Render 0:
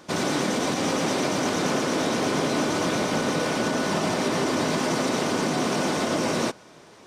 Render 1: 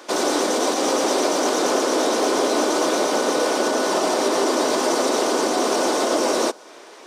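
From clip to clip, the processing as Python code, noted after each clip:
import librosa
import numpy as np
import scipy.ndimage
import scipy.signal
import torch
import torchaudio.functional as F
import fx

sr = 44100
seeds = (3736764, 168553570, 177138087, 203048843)

y = scipy.signal.sosfilt(scipy.signal.butter(4, 320.0, 'highpass', fs=sr, output='sos'), x)
y = fx.dynamic_eq(y, sr, hz=2200.0, q=1.0, threshold_db=-46.0, ratio=4.0, max_db=-8)
y = F.gain(torch.from_numpy(y), 7.5).numpy()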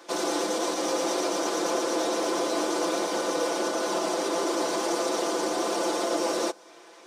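y = x + 0.74 * np.pad(x, (int(5.9 * sr / 1000.0), 0))[:len(x)]
y = F.gain(torch.from_numpy(y), -9.0).numpy()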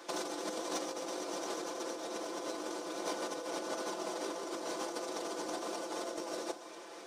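y = fx.over_compress(x, sr, threshold_db=-31.0, ratio=-0.5)
y = y + 10.0 ** (-13.0 / 20.0) * np.pad(y, (int(992 * sr / 1000.0), 0))[:len(y)]
y = np.clip(10.0 ** (20.0 / 20.0) * y, -1.0, 1.0) / 10.0 ** (20.0 / 20.0)
y = F.gain(torch.from_numpy(y), -7.0).numpy()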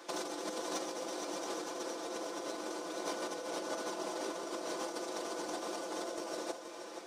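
y = x + 10.0 ** (-9.0 / 20.0) * np.pad(x, (int(475 * sr / 1000.0), 0))[:len(x)]
y = F.gain(torch.from_numpy(y), -1.0).numpy()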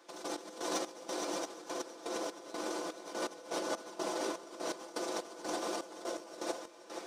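y = fx.step_gate(x, sr, bpm=124, pattern='..x..xx..xxx', floor_db=-12.0, edge_ms=4.5)
y = F.gain(torch.from_numpy(y), 3.0).numpy()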